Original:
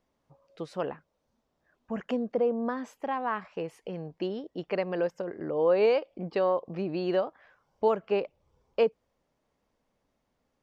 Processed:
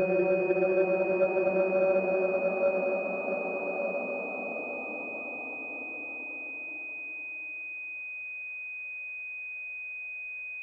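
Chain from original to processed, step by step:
dynamic equaliser 290 Hz, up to +5 dB, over −37 dBFS, Q 1.2
extreme stretch with random phases 32×, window 0.25 s, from 0:07.14
low-shelf EQ 73 Hz +11.5 dB
switching amplifier with a slow clock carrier 2,500 Hz
level −3 dB

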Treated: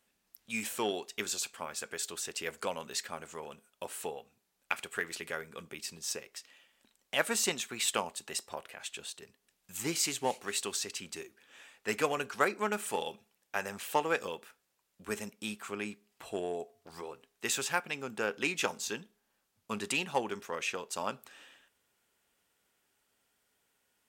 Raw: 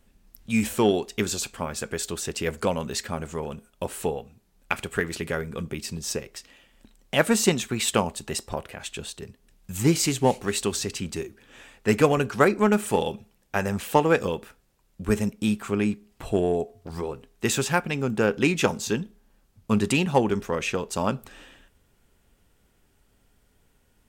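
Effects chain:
high-pass filter 930 Hz 6 dB per octave
level −5 dB

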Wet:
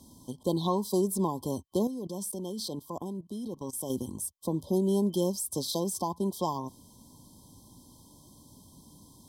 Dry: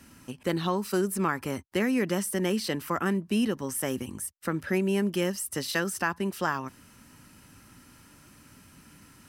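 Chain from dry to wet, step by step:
brick-wall band-stop 1,100–3,100 Hz
0:01.87–0:03.90: output level in coarse steps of 18 dB

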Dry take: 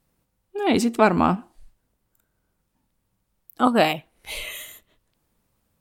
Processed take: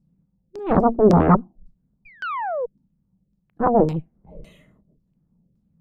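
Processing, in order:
drawn EQ curve 110 Hz 0 dB, 170 Hz +14 dB, 320 Hz −4 dB, 1,700 Hz −25 dB, 3,400 Hz −29 dB, 11,000 Hz −9 dB
sound drawn into the spectrogram fall, 0:02.05–0:02.66, 460–2,500 Hz −30 dBFS
harmonic generator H 3 −20 dB, 6 −11 dB, 7 −9 dB, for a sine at −5.5 dBFS
auto-filter low-pass saw down 1.8 Hz 370–5,300 Hz
level −2.5 dB

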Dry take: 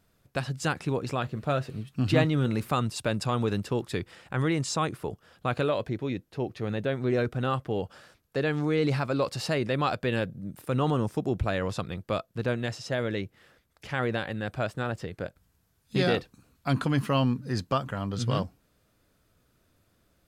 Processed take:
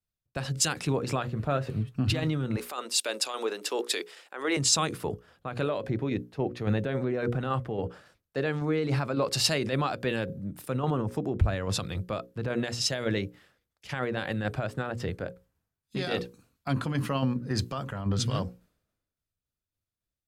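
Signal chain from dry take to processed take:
0:02.56–0:04.57: high-pass filter 360 Hz 24 dB per octave
mains-hum notches 60/120/180/240/300/360/420/480/540 Hz
downward compressor 6 to 1, threshold −27 dBFS, peak gain reduction 9.5 dB
brickwall limiter −27 dBFS, peak gain reduction 10 dB
shaped tremolo saw down 3.6 Hz, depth 35%
multiband upward and downward expander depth 100%
level +8 dB

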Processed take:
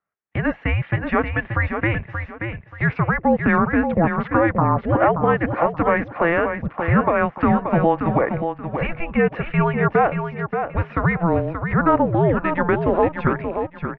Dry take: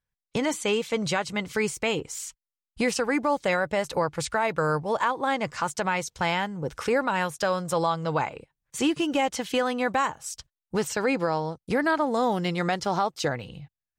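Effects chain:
high-pass filter 310 Hz
single-sideband voice off tune −340 Hz 400–2,500 Hz
repeating echo 580 ms, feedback 26%, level −7 dB
level +8.5 dB

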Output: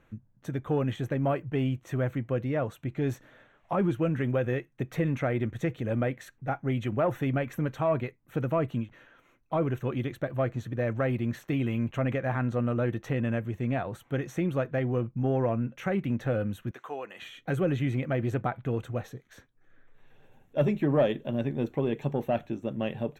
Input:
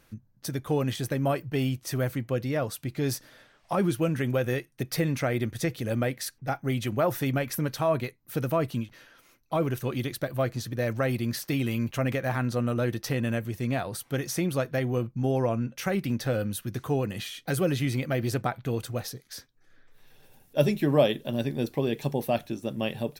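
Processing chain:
0:16.71–0:17.22: high-pass filter 720 Hz 12 dB per octave
soft clipping −15.5 dBFS, distortion −21 dB
moving average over 9 samples

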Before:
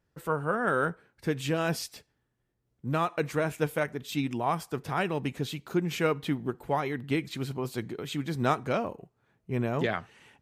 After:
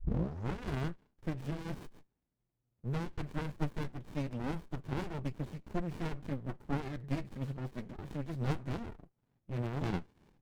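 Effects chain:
turntable start at the beginning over 0.59 s
flanger 0.89 Hz, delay 3.7 ms, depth 5.7 ms, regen −28%
windowed peak hold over 65 samples
level −1.5 dB

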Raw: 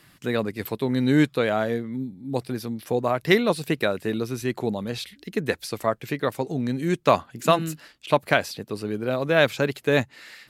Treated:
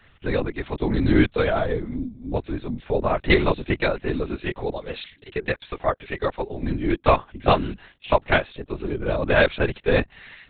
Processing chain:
0:04.35–0:06.63: high-pass filter 320 Hz 24 dB per octave
linear-prediction vocoder at 8 kHz whisper
level +1.5 dB

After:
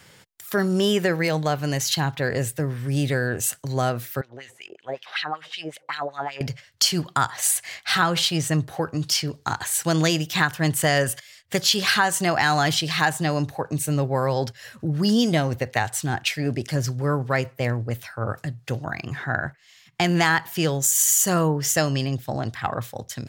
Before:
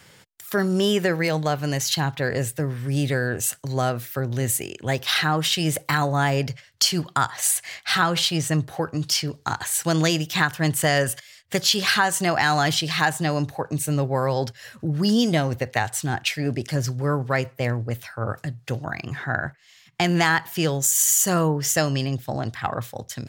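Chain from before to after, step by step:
0:04.21–0:06.41: LFO wah 5.3 Hz 450–3,600 Hz, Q 2.4

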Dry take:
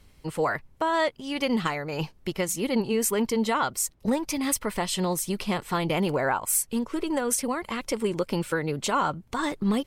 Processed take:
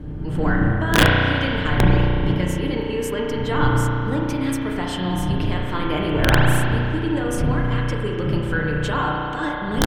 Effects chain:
wind on the microphone 140 Hz −23 dBFS
high-shelf EQ 4,400 Hz −8 dB
comb filter 6.7 ms, depth 39%
wrap-around overflow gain 6.5 dB
thirty-one-band graphic EQ 315 Hz +6 dB, 1,600 Hz +9 dB, 3,150 Hz +8 dB
convolution reverb RT60 2.8 s, pre-delay 33 ms, DRR −2 dB
level −3.5 dB

